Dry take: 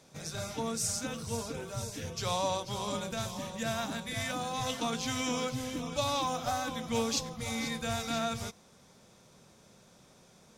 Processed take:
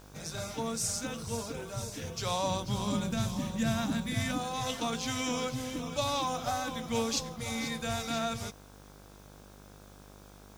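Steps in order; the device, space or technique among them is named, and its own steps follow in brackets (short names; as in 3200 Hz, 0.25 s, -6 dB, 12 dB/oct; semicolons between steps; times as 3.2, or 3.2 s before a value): video cassette with head-switching buzz (buzz 50 Hz, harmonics 33, -54 dBFS -4 dB/oct; white noise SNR 29 dB); 2.46–4.38 resonant low shelf 340 Hz +6.5 dB, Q 1.5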